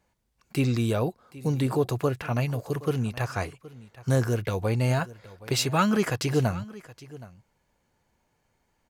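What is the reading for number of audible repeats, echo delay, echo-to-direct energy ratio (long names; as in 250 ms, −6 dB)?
1, 771 ms, −19.0 dB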